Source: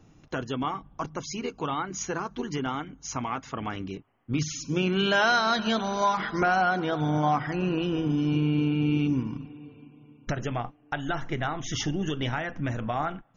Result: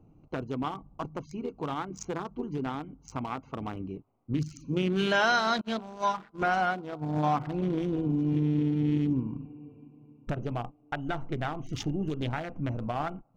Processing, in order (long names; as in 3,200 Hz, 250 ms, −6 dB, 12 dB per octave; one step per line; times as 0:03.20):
adaptive Wiener filter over 25 samples
0:05.61–0:07.17: downward expander −21 dBFS
level −1.5 dB